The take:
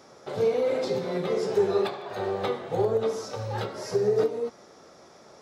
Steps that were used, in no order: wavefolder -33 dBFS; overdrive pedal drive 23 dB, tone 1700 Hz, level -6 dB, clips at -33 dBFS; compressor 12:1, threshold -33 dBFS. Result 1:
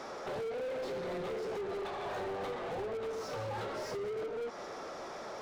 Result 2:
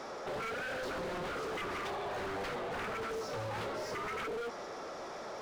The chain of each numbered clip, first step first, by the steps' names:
compressor > overdrive pedal > wavefolder; overdrive pedal > wavefolder > compressor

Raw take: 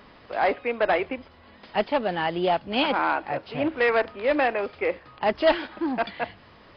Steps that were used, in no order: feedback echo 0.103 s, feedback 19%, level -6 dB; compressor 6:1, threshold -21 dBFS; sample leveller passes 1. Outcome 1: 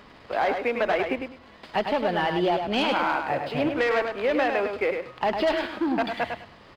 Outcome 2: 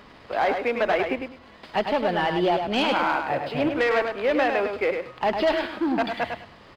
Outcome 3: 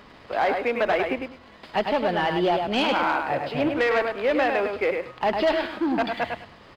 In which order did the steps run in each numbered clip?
sample leveller > compressor > feedback echo; compressor > sample leveller > feedback echo; compressor > feedback echo > sample leveller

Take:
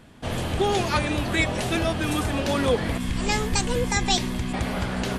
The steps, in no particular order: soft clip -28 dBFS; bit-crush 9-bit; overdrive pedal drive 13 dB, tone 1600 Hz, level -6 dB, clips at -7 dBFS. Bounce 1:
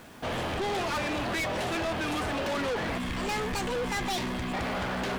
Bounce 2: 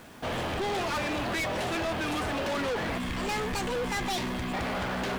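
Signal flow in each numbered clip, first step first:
overdrive pedal > bit-crush > soft clip; overdrive pedal > soft clip > bit-crush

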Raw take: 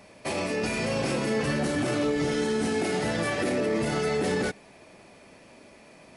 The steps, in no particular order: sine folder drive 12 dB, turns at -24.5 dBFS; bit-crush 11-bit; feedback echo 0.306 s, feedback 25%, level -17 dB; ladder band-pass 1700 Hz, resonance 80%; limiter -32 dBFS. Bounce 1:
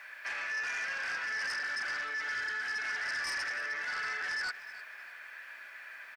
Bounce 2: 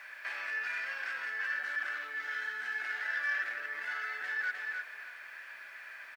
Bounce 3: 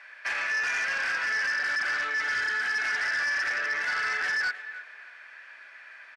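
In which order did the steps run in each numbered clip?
ladder band-pass > sine folder > bit-crush > limiter > feedback echo; feedback echo > limiter > ladder band-pass > sine folder > bit-crush; bit-crush > ladder band-pass > limiter > feedback echo > sine folder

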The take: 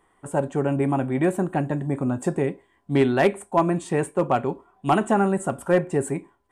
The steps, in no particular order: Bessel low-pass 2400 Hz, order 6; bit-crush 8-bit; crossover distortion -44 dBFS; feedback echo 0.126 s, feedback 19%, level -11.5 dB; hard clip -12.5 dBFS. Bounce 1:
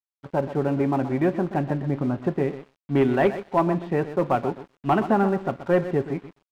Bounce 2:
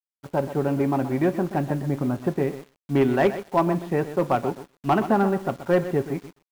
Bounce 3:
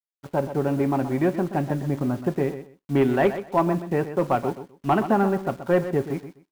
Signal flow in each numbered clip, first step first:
hard clip > feedback echo > bit-crush > Bessel low-pass > crossover distortion; Bessel low-pass > hard clip > feedback echo > bit-crush > crossover distortion; hard clip > Bessel low-pass > bit-crush > crossover distortion > feedback echo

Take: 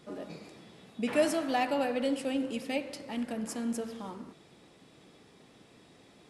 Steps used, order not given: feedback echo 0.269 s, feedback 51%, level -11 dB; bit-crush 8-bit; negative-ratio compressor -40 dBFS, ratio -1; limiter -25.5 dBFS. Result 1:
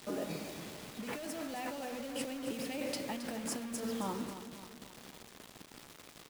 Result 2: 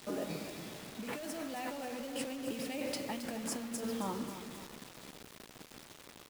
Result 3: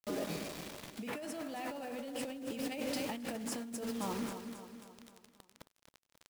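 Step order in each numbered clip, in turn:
limiter > negative-ratio compressor > bit-crush > feedback echo; limiter > negative-ratio compressor > feedback echo > bit-crush; limiter > bit-crush > feedback echo > negative-ratio compressor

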